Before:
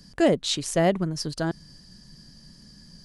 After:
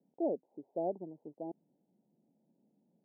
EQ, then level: ladder high-pass 230 Hz, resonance 20%; steep low-pass 890 Hz 96 dB/octave; -8.5 dB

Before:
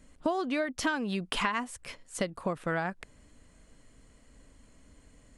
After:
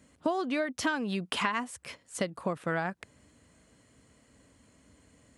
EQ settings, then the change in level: high-pass 70 Hz 24 dB/octave; 0.0 dB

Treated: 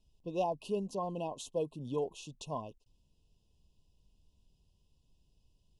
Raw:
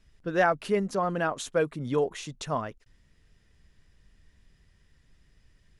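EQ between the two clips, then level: brick-wall FIR band-stop 1.1–2.5 kHz; -8.5 dB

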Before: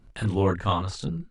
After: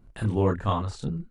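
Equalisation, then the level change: peaking EQ 4 kHz -7 dB 2.7 oct; 0.0 dB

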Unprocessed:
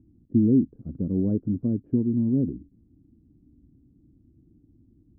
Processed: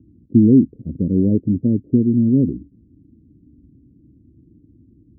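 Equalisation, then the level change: high-pass 53 Hz; steep low-pass 590 Hz 36 dB/octave; +8.0 dB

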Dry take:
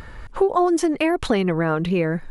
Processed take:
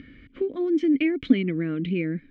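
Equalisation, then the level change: vowel filter i; distance through air 120 m; bass shelf 130 Hz +11.5 dB; +7.5 dB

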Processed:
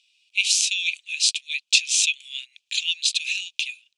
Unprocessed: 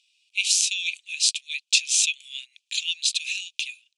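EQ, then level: treble shelf 5.6 kHz -7.5 dB; +4.5 dB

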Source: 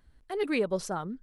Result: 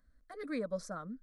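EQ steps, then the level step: pre-emphasis filter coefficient 0.8; tape spacing loss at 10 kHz 22 dB; static phaser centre 570 Hz, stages 8; +9.0 dB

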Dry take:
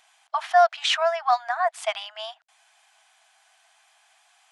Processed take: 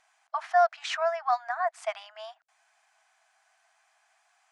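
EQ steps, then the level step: distance through air 62 m; peaking EQ 850 Hz -3.5 dB 0.77 oct; peaking EQ 3.3 kHz -10.5 dB 0.9 oct; -2.0 dB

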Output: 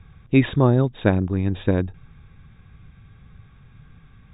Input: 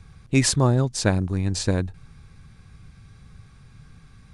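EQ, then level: dynamic bell 340 Hz, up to +5 dB, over -35 dBFS, Q 0.77; brick-wall FIR low-pass 3.8 kHz; 0.0 dB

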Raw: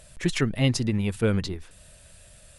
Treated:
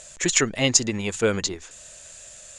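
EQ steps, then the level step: resonant low-pass 6.9 kHz, resonance Q 9.4; tone controls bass -13 dB, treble -3 dB; +5.5 dB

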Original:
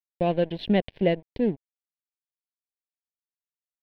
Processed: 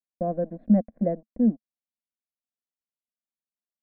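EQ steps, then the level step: four-pole ladder low-pass 1.2 kHz, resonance 25%; peaking EQ 220 Hz +11.5 dB 0.45 oct; static phaser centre 600 Hz, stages 8; +2.5 dB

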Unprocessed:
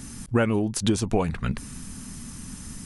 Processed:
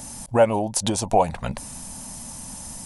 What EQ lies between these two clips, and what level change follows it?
high-order bell 720 Hz +15 dB 1.1 oct; treble shelf 4 kHz +11 dB; -3.0 dB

